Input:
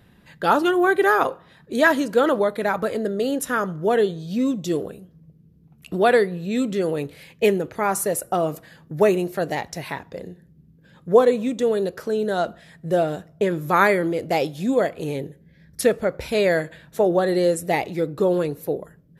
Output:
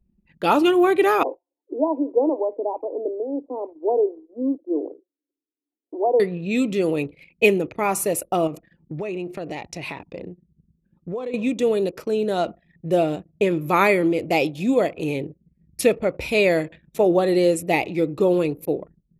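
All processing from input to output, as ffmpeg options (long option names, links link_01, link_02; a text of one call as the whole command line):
ffmpeg -i in.wav -filter_complex "[0:a]asettb=1/sr,asplit=3[link_01][link_02][link_03];[link_01]atrim=end=1.234[link_04];[link_02]atrim=start=1.23:end=6.2,asetpts=PTS-STARTPTS,afade=type=in:duration=0.004:curve=qsin,afade=type=out:start_time=4.966:duration=0.004:curve=qsin,acrossover=split=780[link_05][link_06];[link_05]aeval=exprs='val(0)*(1-0.5/2+0.5/2*cos(2*PI*2.2*n/s))':channel_layout=same[link_07];[link_06]aeval=exprs='val(0)*(1-0.5/2-0.5/2*cos(2*PI*2.2*n/s))':channel_layout=same[link_08];[link_07][link_08]amix=inputs=2:normalize=0,asuperpass=centerf=510:order=20:qfactor=0.71[link_09];[link_03]atrim=start=6.196[link_10];[link_04][link_09]acrossfade=duration=0.004:curve1=hsin:curve2=qsin[link_11];[link_11][link_10]acrossfade=duration=0.004:curve1=qsin:curve2=hsin,asettb=1/sr,asplit=3[link_12][link_13][link_14];[link_12]atrim=end=8.474[link_15];[link_13]atrim=start=8.47:end=11.34,asetpts=PTS-STARTPTS,afade=type=in:duration=0.004:curve=qsin,afade=type=out:start_time=2.866:duration=0.004:curve=qsin,lowpass=10000,acompressor=threshold=-28dB:ratio=5:attack=3.2:release=140:knee=1:detection=peak[link_16];[link_14]atrim=start=11.336[link_17];[link_15][link_16]acrossfade=duration=0.004:curve1=hsin:curve2=qsin[link_18];[link_18][link_17]acrossfade=duration=0.004:curve1=qsin:curve2=hsin,anlmdn=0.251,equalizer=frequency=315:width_type=o:width=0.33:gain=6,equalizer=frequency=1600:width_type=o:width=0.33:gain=-10,equalizer=frequency=2500:width_type=o:width=0.33:gain=11" out.wav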